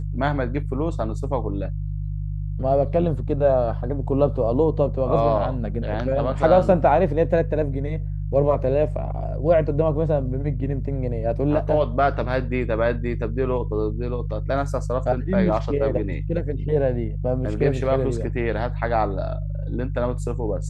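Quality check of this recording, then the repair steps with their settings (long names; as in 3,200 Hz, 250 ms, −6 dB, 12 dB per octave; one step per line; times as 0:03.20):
mains hum 50 Hz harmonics 3 −27 dBFS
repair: hum removal 50 Hz, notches 3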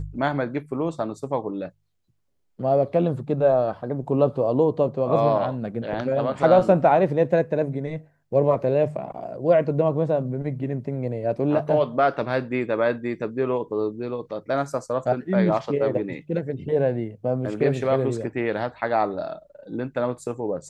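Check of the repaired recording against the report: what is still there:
none of them is left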